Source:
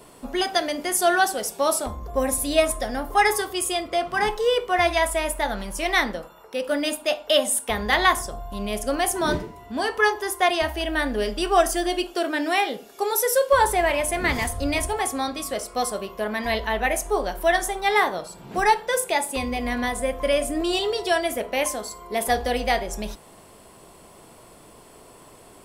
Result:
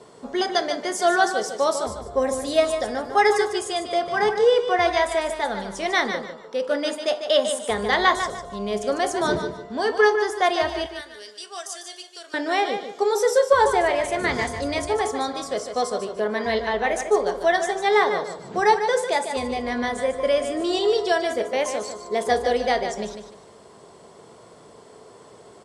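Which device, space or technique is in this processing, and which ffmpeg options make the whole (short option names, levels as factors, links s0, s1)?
car door speaker: -filter_complex "[0:a]asettb=1/sr,asplit=3[s0][s1][s2];[s0]atrim=end=10.864[s3];[s1]atrim=start=10.86:end=12.34,asetpts=PTS-STARTPTS,afade=t=in:d=0.004:c=qsin,afade=t=out:st=1.476:d=0.004:c=qsin,aderivative[s4];[s2]atrim=start=12.336[s5];[s3][s4]acrossfade=d=0.004:c1=hsin:c2=qsin[s6];[s6][s5]acrossfade=d=0.004:c1=qsin:c2=hsin,highpass=100,equalizer=f=290:t=q:w=4:g=-4,equalizer=f=440:t=q:w=4:g=7,equalizer=f=2600:t=q:w=4:g=-8,lowpass=f=7600:w=0.5412,lowpass=f=7600:w=1.3066,aecho=1:1:149|298|447:0.376|0.101|0.0274"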